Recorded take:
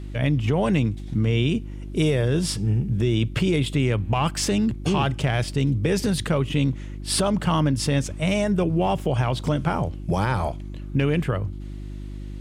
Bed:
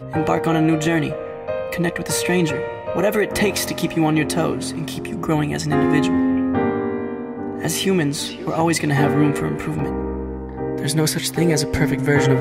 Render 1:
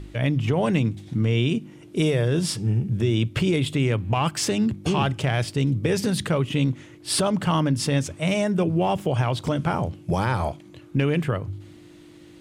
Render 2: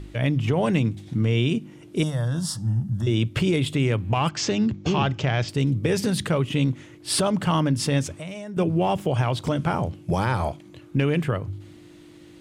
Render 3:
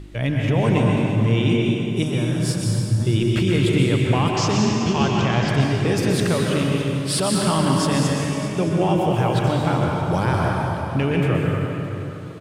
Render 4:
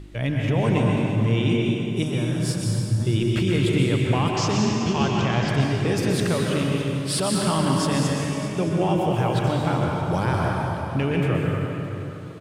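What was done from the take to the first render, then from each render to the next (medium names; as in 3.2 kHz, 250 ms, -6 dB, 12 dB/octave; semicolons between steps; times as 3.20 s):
de-hum 50 Hz, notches 5
2.03–3.07 s: static phaser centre 1 kHz, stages 4; 4.29–5.49 s: steep low-pass 7 kHz 48 dB/octave; 8.13–8.57 s: compression 12:1, threshold -31 dBFS
delay 617 ms -16 dB; plate-style reverb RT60 3 s, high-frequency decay 0.7×, pre-delay 110 ms, DRR -2 dB
trim -2.5 dB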